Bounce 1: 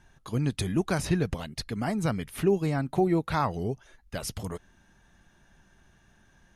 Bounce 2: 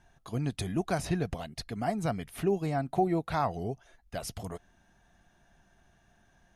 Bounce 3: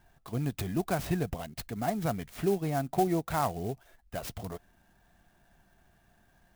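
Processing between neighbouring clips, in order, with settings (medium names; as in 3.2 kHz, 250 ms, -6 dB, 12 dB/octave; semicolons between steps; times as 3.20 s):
peaking EQ 700 Hz +10 dB 0.27 oct; trim -4.5 dB
sampling jitter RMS 0.039 ms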